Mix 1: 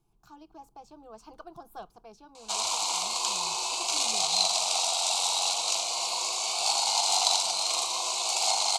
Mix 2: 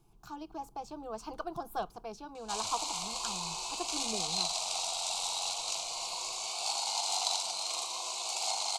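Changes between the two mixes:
speech +7.0 dB; background -7.5 dB

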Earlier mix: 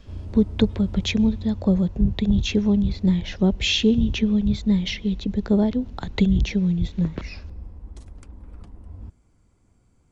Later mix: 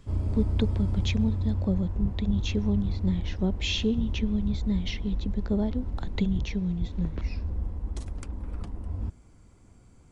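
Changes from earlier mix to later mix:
speech -8.0 dB; background +6.5 dB

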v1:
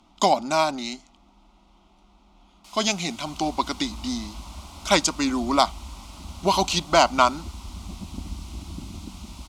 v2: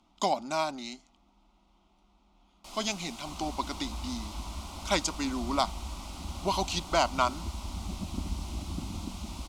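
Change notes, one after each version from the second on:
speech -8.5 dB; first sound: remove HPF 1000 Hz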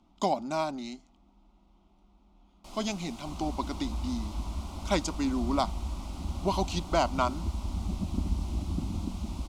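master: add tilt shelf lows +5 dB, about 710 Hz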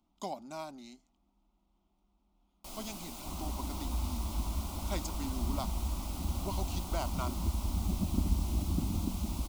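speech -12.0 dB; master: remove air absorption 60 m

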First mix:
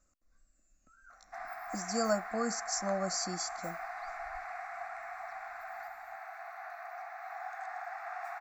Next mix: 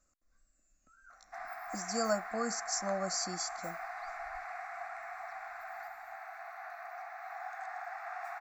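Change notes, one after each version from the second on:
master: add low shelf 470 Hz -3.5 dB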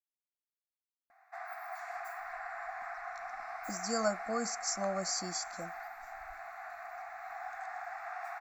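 speech: entry +1.95 s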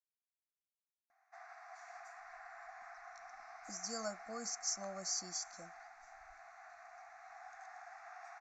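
master: add ladder low-pass 6800 Hz, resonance 65%

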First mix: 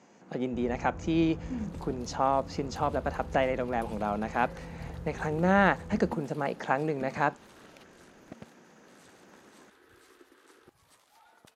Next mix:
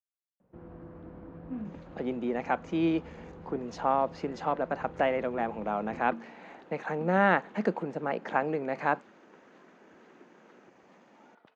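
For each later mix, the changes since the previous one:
speech: entry +1.65 s; second sound: add air absorption 200 m; master: add three-band isolator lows -13 dB, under 170 Hz, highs -13 dB, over 3600 Hz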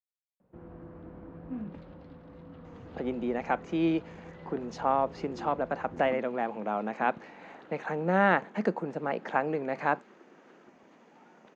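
speech: entry +1.00 s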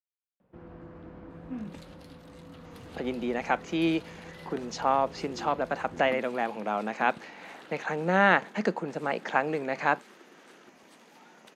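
second sound: remove air absorption 200 m; master: add high shelf 2200 Hz +12 dB

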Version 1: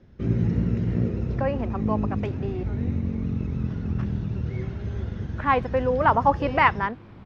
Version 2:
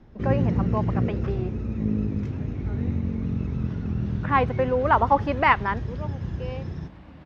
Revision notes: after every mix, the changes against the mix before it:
speech: entry -1.15 s; second sound: entry -2.75 s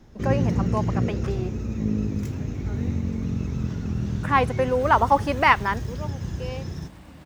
master: remove air absorption 240 m

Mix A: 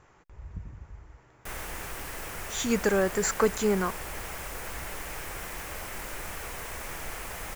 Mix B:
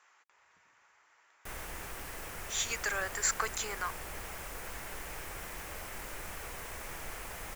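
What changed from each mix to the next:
speech: add HPF 1300 Hz 12 dB/oct; background -5.0 dB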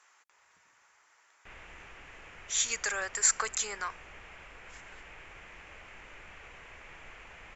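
background: add ladder low-pass 3100 Hz, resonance 45%; master: add high shelf 6700 Hz +11.5 dB

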